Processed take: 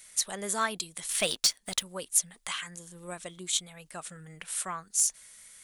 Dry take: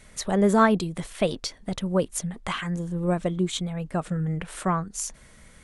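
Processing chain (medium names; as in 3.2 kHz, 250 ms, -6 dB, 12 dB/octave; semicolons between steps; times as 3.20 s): pre-emphasis filter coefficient 0.97; 1.09–1.83 s: waveshaping leveller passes 2; in parallel at -4 dB: overload inside the chain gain 25 dB; on the sum: trim +2.5 dB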